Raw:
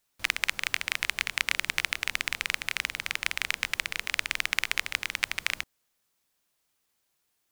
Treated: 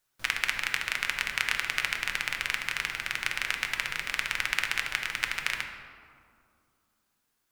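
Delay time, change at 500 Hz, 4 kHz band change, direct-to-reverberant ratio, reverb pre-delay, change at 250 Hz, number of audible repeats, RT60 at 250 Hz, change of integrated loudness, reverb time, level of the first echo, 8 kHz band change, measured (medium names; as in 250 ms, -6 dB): no echo, 0.0 dB, -1.5 dB, 2.0 dB, 5 ms, +0.5 dB, no echo, 3.1 s, -0.5 dB, 2.3 s, no echo, -2.0 dB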